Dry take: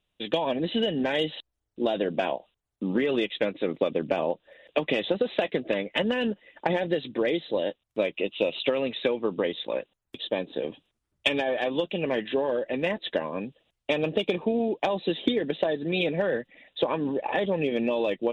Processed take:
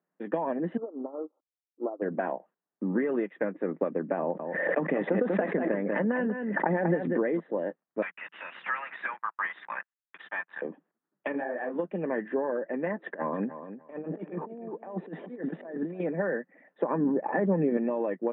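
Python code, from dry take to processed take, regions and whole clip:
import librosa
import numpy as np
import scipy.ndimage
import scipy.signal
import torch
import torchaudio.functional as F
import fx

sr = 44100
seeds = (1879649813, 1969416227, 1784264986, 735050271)

y = fx.chain(x, sr, fx.median_filter(points=25),
    fx.brickwall_bandpass(low_hz=240.0, high_hz=1400.0),
    fx.upward_expand(threshold_db=-37.0, expansion=2.5), at=(0.77, 2.02))
y = fx.chain(y, sr, fx.low_shelf(hz=84.0, db=11.5),
    fx.echo_single(ms=192, db=-9.5),
    fx.pre_swell(db_per_s=33.0), at=(4.2, 7.4))
y = fx.chain(y, sr, fx.bessel_highpass(hz=1800.0, order=8),
    fx.leveller(passes=5), at=(8.02, 10.62))
y = fx.chain(y, sr, fx.law_mismatch(coded='mu'),
    fx.detune_double(cents=58), at=(11.32, 11.79))
y = fx.chain(y, sr, fx.over_compress(threshold_db=-32.0, ratio=-0.5),
    fx.echo_feedback(ms=297, feedback_pct=17, wet_db=-13), at=(12.99, 16.0))
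y = fx.chain(y, sr, fx.resample_bad(factor=6, down='filtered', up='hold'),
    fx.peak_eq(hz=130.0, db=8.0, octaves=2.7), at=(16.9, 17.77))
y = scipy.signal.sosfilt(scipy.signal.cheby1(4, 1.0, [170.0, 1800.0], 'bandpass', fs=sr, output='sos'), y)
y = fx.dynamic_eq(y, sr, hz=550.0, q=0.74, threshold_db=-33.0, ratio=4.0, max_db=-3)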